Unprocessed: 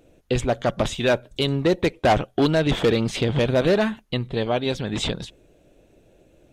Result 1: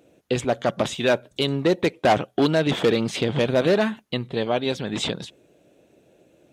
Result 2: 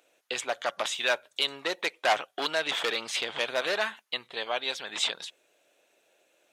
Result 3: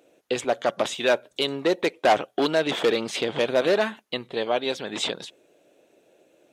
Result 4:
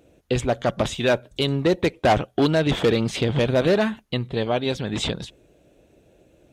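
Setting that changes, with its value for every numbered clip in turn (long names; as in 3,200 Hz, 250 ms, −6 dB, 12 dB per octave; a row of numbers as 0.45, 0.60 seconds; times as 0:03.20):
high-pass filter, corner frequency: 140, 1,000, 370, 43 Hertz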